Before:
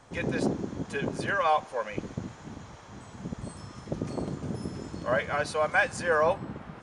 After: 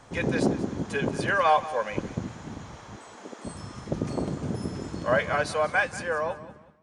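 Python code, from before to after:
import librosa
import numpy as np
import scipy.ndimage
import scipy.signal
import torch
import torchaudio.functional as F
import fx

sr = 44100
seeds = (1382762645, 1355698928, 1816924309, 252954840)

p1 = fx.fade_out_tail(x, sr, length_s=1.55)
p2 = fx.highpass(p1, sr, hz=320.0, slope=24, at=(2.96, 3.45))
p3 = p2 + fx.echo_feedback(p2, sr, ms=187, feedback_pct=28, wet_db=-16, dry=0)
y = p3 * 10.0 ** (3.5 / 20.0)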